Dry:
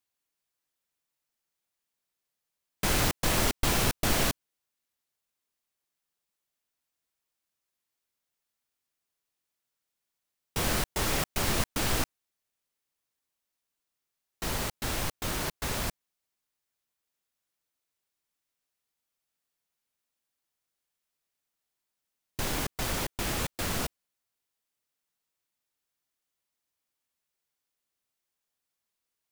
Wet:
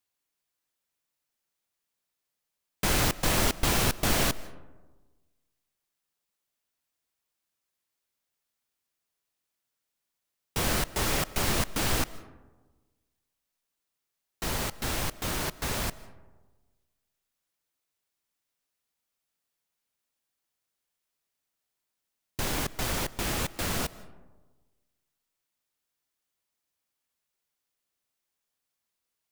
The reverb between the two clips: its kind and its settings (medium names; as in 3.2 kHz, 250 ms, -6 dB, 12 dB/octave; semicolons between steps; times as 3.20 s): algorithmic reverb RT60 1.3 s, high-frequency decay 0.35×, pre-delay 110 ms, DRR 18.5 dB; trim +1 dB